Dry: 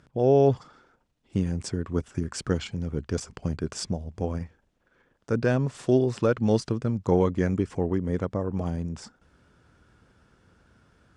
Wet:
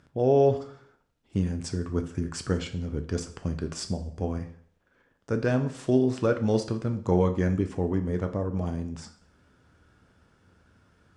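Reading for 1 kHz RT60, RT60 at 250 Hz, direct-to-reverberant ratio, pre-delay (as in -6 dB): 0.60 s, 0.60 s, 6.5 dB, 4 ms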